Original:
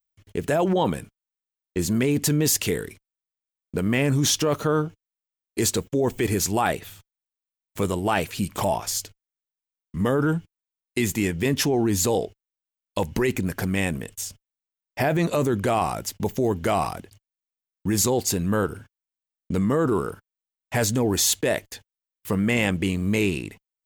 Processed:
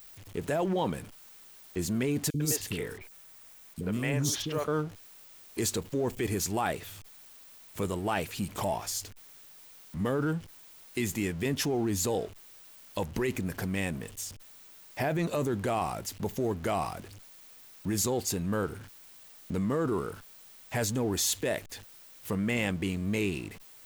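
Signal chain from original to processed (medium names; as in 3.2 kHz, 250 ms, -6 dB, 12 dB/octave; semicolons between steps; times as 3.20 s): jump at every zero crossing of -36 dBFS; 2.30–4.68 s: three bands offset in time highs, lows, mids 40/100 ms, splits 370/4000 Hz; trim -8 dB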